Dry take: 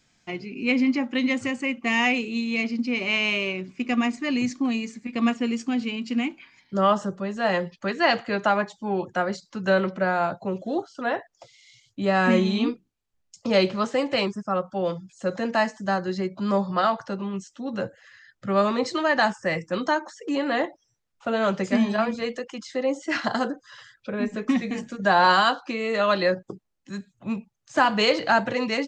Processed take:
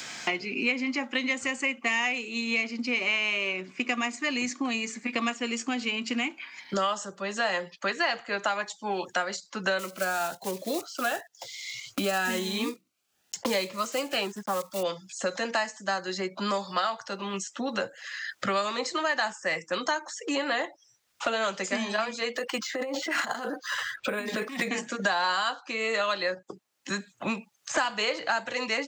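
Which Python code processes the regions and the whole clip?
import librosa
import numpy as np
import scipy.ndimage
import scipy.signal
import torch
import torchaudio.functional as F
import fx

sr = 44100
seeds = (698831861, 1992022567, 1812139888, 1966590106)

y = fx.chain(x, sr, fx.block_float(bits=5),
    fx.notch_cascade(direction='rising', hz=1.0), at=(9.79, 14.85))
y = fx.chain(y, sr, fx.over_compress(threshold_db=-32.0, ratio=-1.0),
    fx.resample_linear(factor=4), at=(22.35, 24.69))
y = fx.highpass(y, sr, hz=1000.0, slope=6)
y = fx.dynamic_eq(y, sr, hz=7200.0, q=2.2, threshold_db=-55.0, ratio=4.0, max_db=7)
y = fx.band_squash(y, sr, depth_pct=100)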